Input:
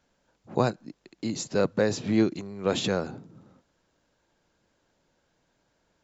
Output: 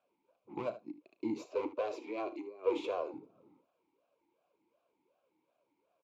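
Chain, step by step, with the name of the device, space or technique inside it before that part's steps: 1.38–3.14 steep high-pass 300 Hz 36 dB/oct; talk box (tube stage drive 27 dB, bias 0.65; vowel sweep a-u 2.7 Hz); early reflections 35 ms -14.5 dB, 76 ms -14.5 dB; gain +7.5 dB

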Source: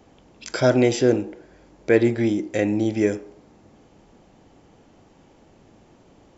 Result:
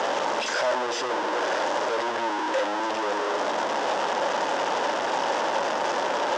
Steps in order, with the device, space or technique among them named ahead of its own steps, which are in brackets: home computer beeper (infinite clipping; speaker cabinet 540–5600 Hz, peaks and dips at 570 Hz +8 dB, 920 Hz +8 dB, 1600 Hz +3 dB, 2300 Hz -6 dB, 4200 Hz -7 dB)

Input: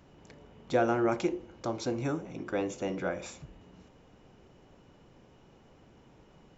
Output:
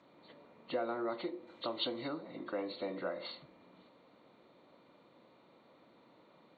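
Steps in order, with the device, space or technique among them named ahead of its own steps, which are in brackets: hearing aid with frequency lowering (nonlinear frequency compression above 1600 Hz 1.5:1; compressor 2.5:1, threshold -33 dBFS, peak gain reduction 8 dB; speaker cabinet 370–6700 Hz, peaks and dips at 410 Hz -9 dB, 790 Hz -8 dB, 1600 Hz -9 dB, 2500 Hz -7 dB); 1.47–2.08 high shelf 3200 Hz +11.5 dB; gain +3 dB

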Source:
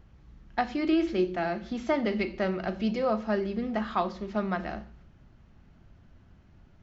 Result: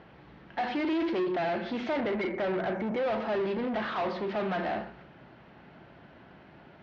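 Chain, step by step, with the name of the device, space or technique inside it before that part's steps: 2–3.11 Chebyshev band-stop 2300–5700 Hz, order 5; overdrive pedal into a guitar cabinet (overdrive pedal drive 33 dB, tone 1400 Hz, clips at -13 dBFS; speaker cabinet 77–4500 Hz, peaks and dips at 92 Hz -10 dB, 220 Hz -4 dB, 1200 Hz -5 dB); gain -8 dB

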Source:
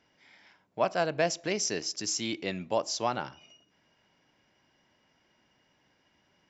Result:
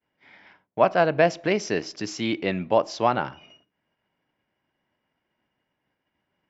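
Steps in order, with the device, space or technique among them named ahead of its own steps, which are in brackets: hearing-loss simulation (LPF 2700 Hz 12 dB/oct; expander -59 dBFS); gain +8.5 dB

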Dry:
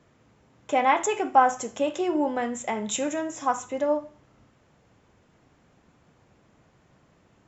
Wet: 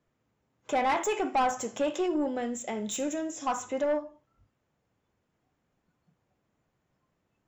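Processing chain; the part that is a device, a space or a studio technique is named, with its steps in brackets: spectral noise reduction 16 dB; 2.06–3.47 ten-band EQ 125 Hz -6 dB, 1000 Hz -10 dB, 2000 Hz -5 dB; saturation between pre-emphasis and de-emphasis (high shelf 3300 Hz +11 dB; soft clip -21 dBFS, distortion -8 dB; high shelf 3300 Hz -11 dB)

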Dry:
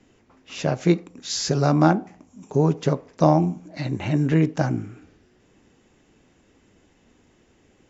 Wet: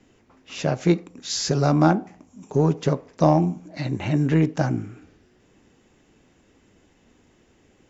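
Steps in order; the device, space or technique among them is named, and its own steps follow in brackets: parallel distortion (in parallel at -13 dB: hard clip -16 dBFS, distortion -9 dB); on the sum: gain -1.5 dB

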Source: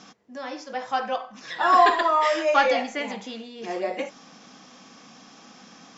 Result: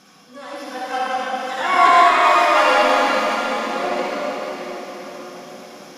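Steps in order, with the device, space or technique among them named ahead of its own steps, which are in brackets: shimmer-style reverb (harmoniser +12 st -8 dB; reverb RT60 5.3 s, pre-delay 45 ms, DRR -8 dB); gain -3 dB

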